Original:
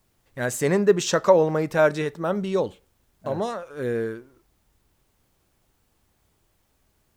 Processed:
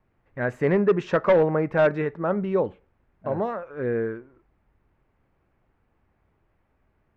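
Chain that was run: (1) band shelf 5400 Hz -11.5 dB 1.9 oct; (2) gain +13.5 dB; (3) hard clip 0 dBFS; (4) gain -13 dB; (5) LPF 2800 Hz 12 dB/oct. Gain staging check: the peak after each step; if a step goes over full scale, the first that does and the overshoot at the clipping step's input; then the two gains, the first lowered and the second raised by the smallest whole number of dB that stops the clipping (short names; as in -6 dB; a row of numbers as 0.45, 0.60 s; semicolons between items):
-4.0, +9.5, 0.0, -13.0, -12.5 dBFS; step 2, 9.5 dB; step 2 +3.5 dB, step 4 -3 dB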